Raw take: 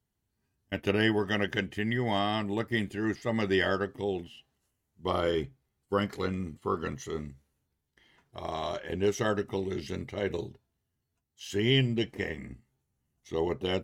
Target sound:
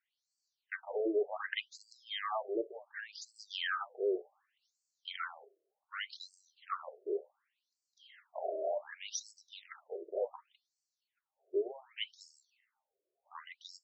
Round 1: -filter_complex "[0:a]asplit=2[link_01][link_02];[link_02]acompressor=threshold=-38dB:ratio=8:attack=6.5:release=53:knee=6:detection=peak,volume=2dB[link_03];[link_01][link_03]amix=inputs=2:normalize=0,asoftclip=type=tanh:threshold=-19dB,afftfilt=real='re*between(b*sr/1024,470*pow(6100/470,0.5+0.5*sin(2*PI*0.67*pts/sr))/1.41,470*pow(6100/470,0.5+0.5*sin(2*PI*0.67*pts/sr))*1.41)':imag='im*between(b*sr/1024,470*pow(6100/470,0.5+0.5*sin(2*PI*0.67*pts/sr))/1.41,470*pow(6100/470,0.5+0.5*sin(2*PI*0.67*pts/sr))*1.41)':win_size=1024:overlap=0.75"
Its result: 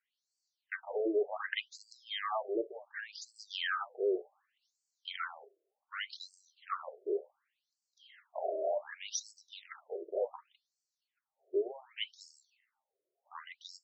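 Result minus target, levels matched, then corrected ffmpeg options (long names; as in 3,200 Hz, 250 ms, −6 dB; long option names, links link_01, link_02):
downward compressor: peak gain reduction −8 dB
-filter_complex "[0:a]asplit=2[link_01][link_02];[link_02]acompressor=threshold=-47dB:ratio=8:attack=6.5:release=53:knee=6:detection=peak,volume=2dB[link_03];[link_01][link_03]amix=inputs=2:normalize=0,asoftclip=type=tanh:threshold=-19dB,afftfilt=real='re*between(b*sr/1024,470*pow(6100/470,0.5+0.5*sin(2*PI*0.67*pts/sr))/1.41,470*pow(6100/470,0.5+0.5*sin(2*PI*0.67*pts/sr))*1.41)':imag='im*between(b*sr/1024,470*pow(6100/470,0.5+0.5*sin(2*PI*0.67*pts/sr))/1.41,470*pow(6100/470,0.5+0.5*sin(2*PI*0.67*pts/sr))*1.41)':win_size=1024:overlap=0.75"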